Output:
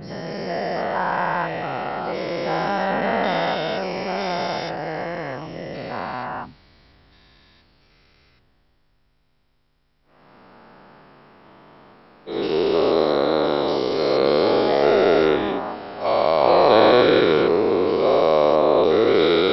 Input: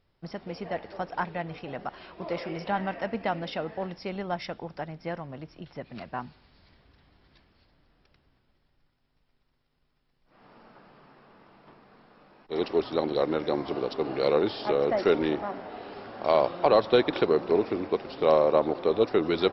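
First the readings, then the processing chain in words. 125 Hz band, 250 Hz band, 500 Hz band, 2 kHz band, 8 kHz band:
+6.5 dB, +7.5 dB, +8.0 dB, +10.5 dB, n/a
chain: spectral dilation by 0.48 s

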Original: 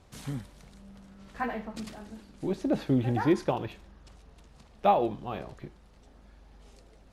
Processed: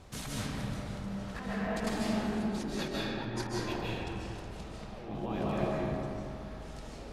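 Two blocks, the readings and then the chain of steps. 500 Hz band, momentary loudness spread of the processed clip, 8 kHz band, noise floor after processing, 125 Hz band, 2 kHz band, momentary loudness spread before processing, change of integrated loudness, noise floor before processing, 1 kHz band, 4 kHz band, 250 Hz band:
-4.5 dB, 12 LU, n/a, -45 dBFS, -2.0 dB, +2.0 dB, 20 LU, -6.0 dB, -57 dBFS, -8.0 dB, +6.0 dB, -2.5 dB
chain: negative-ratio compressor -40 dBFS, ratio -1; digital reverb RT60 2.8 s, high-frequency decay 0.5×, pre-delay 0.11 s, DRR -6.5 dB; gain -3 dB

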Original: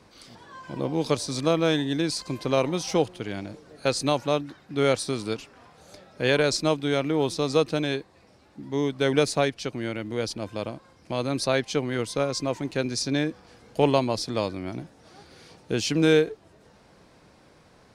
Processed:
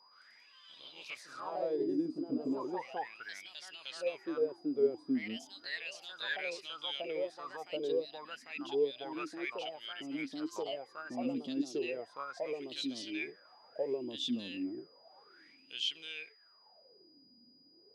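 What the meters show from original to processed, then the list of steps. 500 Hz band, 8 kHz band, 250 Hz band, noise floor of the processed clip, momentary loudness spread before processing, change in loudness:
-12.0 dB, -20.0 dB, -11.0 dB, -64 dBFS, 12 LU, -12.0 dB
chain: high shelf 7400 Hz +11.5 dB; limiter -14.5 dBFS, peak gain reduction 9 dB; wah 0.33 Hz 240–3200 Hz, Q 13; echoes that change speed 0.114 s, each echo +2 st, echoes 2; whine 4900 Hz -66 dBFS; gain +3 dB

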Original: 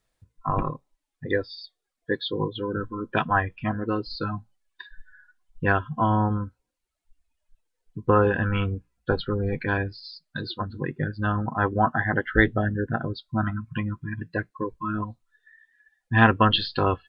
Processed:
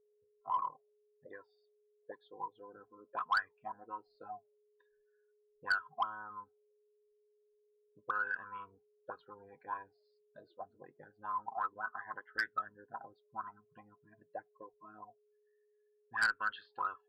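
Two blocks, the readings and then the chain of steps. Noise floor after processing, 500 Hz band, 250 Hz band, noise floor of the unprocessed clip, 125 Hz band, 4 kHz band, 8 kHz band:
-75 dBFS, -25.0 dB, -34.5 dB, -82 dBFS, under -40 dB, -19.5 dB, n/a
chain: auto-wah 470–1500 Hz, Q 18, up, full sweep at -17 dBFS; whine 420 Hz -73 dBFS; added harmonics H 2 -25 dB, 5 -8 dB, 7 -17 dB, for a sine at -17.5 dBFS; gain -4.5 dB

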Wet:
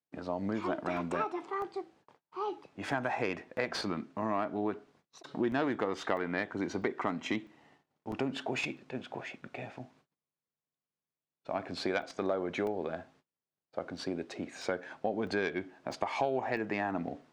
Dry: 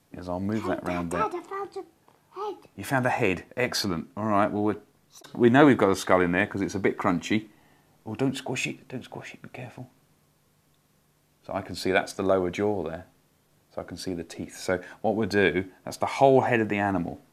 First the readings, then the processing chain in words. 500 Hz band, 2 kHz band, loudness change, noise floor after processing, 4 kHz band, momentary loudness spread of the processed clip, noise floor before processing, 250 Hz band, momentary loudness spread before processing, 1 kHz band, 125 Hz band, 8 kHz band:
-9.0 dB, -8.5 dB, -9.5 dB, under -85 dBFS, -7.5 dB, 11 LU, -66 dBFS, -9.5 dB, 18 LU, -8.0 dB, -12.0 dB, -12.5 dB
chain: tracing distortion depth 0.069 ms; gate -58 dBFS, range -30 dB; HPF 130 Hz 6 dB/oct; low shelf 170 Hz -6.5 dB; compressor 4:1, threshold -29 dBFS, peak gain reduction 14.5 dB; air absorption 110 m; crackling interface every 0.65 s, samples 64, zero, from 0.97

